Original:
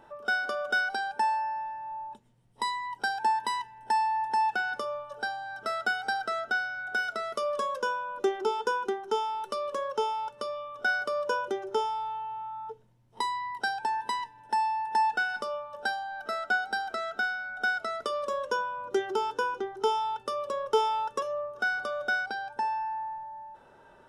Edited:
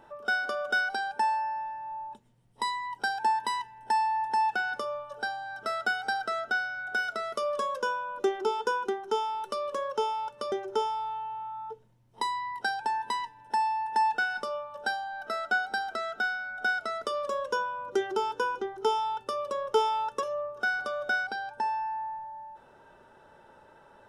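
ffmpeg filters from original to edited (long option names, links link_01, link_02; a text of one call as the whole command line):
ffmpeg -i in.wav -filter_complex "[0:a]asplit=2[link_01][link_02];[link_01]atrim=end=10.522[link_03];[link_02]atrim=start=11.508[link_04];[link_03][link_04]acrossfade=duration=0.004:curve1=hsin:curve2=hsin" out.wav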